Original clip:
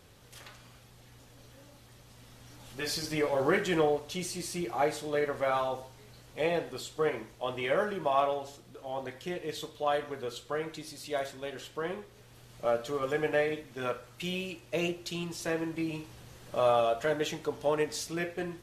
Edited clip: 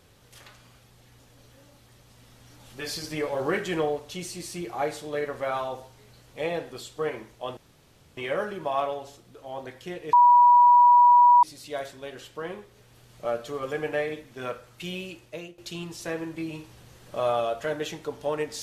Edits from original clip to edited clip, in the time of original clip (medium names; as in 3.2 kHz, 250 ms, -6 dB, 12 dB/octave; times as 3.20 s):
7.57 s: insert room tone 0.60 s
9.53–10.83 s: bleep 971 Hz -12 dBFS
14.63–14.98 s: fade out quadratic, to -15 dB